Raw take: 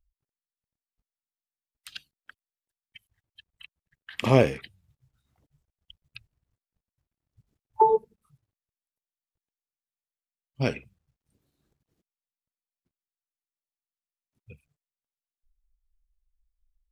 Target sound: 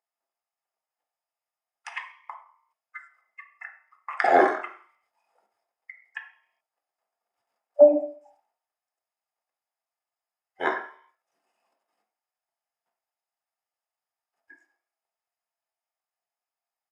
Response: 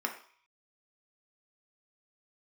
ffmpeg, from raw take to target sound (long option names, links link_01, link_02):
-filter_complex "[0:a]asetrate=29433,aresample=44100,atempo=1.49831,highpass=frequency=680:width_type=q:width=4.9[link_01];[1:a]atrim=start_sample=2205,asetrate=41895,aresample=44100[link_02];[link_01][link_02]afir=irnorm=-1:irlink=0"